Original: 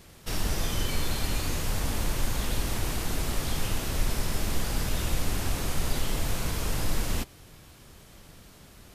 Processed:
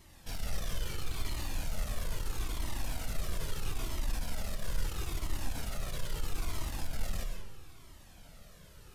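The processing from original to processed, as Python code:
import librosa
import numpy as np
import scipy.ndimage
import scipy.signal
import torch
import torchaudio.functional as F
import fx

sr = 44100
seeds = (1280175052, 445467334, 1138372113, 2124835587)

y = 10.0 ** (-28.0 / 20.0) * np.tanh(x / 10.0 ** (-28.0 / 20.0))
y = fx.rev_freeverb(y, sr, rt60_s=1.1, hf_ratio=0.7, predelay_ms=75, drr_db=3.0)
y = fx.comb_cascade(y, sr, direction='falling', hz=0.76)
y = y * librosa.db_to_amplitude(-2.0)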